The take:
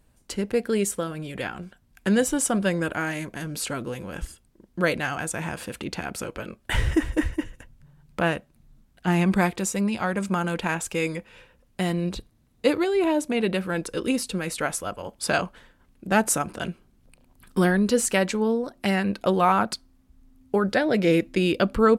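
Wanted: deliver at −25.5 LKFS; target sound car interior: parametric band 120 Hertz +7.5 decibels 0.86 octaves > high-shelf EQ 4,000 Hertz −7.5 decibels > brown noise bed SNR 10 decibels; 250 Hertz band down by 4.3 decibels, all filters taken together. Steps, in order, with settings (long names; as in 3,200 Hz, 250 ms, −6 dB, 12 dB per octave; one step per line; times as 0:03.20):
parametric band 120 Hz +7.5 dB 0.86 octaves
parametric band 250 Hz −9 dB
high-shelf EQ 4,000 Hz −7.5 dB
brown noise bed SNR 10 dB
level +2.5 dB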